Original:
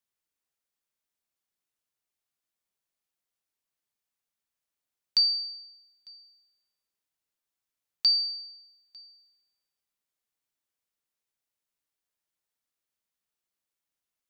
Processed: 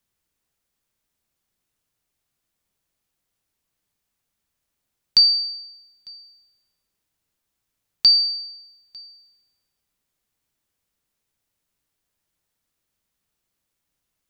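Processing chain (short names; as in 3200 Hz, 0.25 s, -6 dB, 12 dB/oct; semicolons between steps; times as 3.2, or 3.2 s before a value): low shelf 230 Hz +11.5 dB; gain +8.5 dB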